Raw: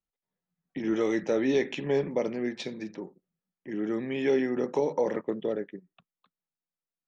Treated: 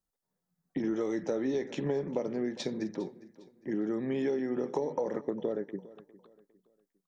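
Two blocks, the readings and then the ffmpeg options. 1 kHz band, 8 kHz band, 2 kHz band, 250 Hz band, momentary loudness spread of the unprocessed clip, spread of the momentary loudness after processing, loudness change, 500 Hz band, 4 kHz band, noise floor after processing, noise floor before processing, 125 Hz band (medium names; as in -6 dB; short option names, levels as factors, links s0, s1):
-4.0 dB, no reading, -8.5 dB, -2.5 dB, 14 LU, 9 LU, -4.5 dB, -4.5 dB, -5.0 dB, under -85 dBFS, under -85 dBFS, -1.5 dB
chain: -filter_complex "[0:a]equalizer=f=2600:w=1.5:g=-11,acompressor=threshold=0.0224:ratio=6,asplit=2[s0][s1];[s1]aecho=0:1:405|810|1215:0.112|0.0381|0.013[s2];[s0][s2]amix=inputs=2:normalize=0,volume=1.68"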